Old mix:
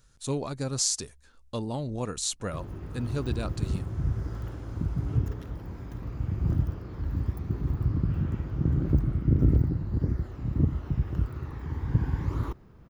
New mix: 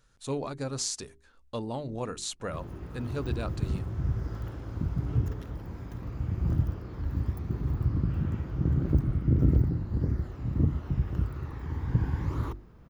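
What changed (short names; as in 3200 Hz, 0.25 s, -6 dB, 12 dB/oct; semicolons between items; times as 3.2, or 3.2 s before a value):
speech: add tone controls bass -4 dB, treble -7 dB; master: add notches 50/100/150/200/250/300/350/400 Hz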